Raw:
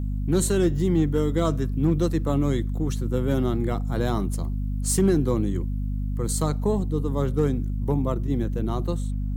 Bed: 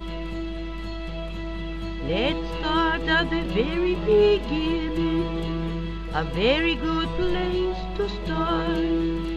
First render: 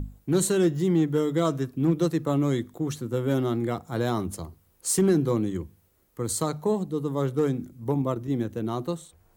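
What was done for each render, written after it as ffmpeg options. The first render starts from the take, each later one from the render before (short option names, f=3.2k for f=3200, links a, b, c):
-af "bandreject=f=50:t=h:w=6,bandreject=f=100:t=h:w=6,bandreject=f=150:t=h:w=6,bandreject=f=200:t=h:w=6,bandreject=f=250:t=h:w=6"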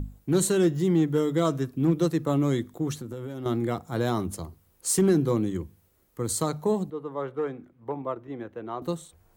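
-filter_complex "[0:a]asettb=1/sr,asplit=3[a][b][c];[a]atrim=end=2.964[d];[b]atrim=start=2.96:end=3.46,asetpts=PTS-STARTPTS,afade=t=in:d=0.004:c=qsin,afade=t=out:st=0.496:d=0.004:c=qsin,acompressor=threshold=-31dB:ratio=16:attack=3.2:release=140:knee=1:detection=peak[e];[c]atrim=start=3.456[f];[d][e]acrossfade=d=0.004:c1=hsin:c2=qsin[g];[g][f]acrossfade=d=0.004:c1=qsin:c2=hsin,asettb=1/sr,asplit=3[h][i][j];[h]atrim=end=6.904[k];[i]atrim=start=6.9:end=8.82,asetpts=PTS-STARTPTS,afade=t=in:d=0.004:c=qsin,afade=t=out:st=1.916:d=0.004:c=qsin,acrossover=split=420 2700:gain=0.178 1 0.0631[l][m][n];[l][m][n]amix=inputs=3:normalize=0[o];[j]atrim=start=8.816[p];[k][o]acrossfade=d=0.004:c1=hsin:c2=qsin[q];[q][p]acrossfade=d=0.004:c1=qsin:c2=hsin"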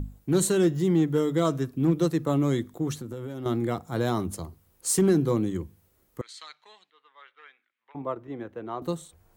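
-filter_complex "[0:a]asettb=1/sr,asplit=3[a][b][c];[a]atrim=end=6.214[d];[b]atrim=start=6.21:end=7.95,asetpts=PTS-STARTPTS,afade=t=in:d=0.004:c=qsin,afade=t=out:st=1.736:d=0.004:c=qsin,asuperpass=centerf=2700:order=4:qfactor=1.2[e];[c]atrim=start=7.946[f];[d][e]acrossfade=d=0.004:c1=hsin:c2=qsin[g];[g][f]acrossfade=d=0.004:c1=qsin:c2=hsin"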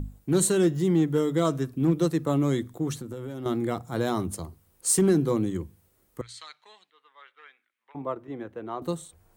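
-af "equalizer=f=8.8k:t=o:w=0.23:g=5,bandreject=f=60:t=h:w=6,bandreject=f=120:t=h:w=6"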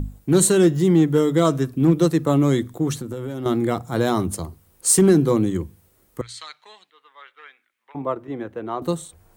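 -af "volume=6.5dB"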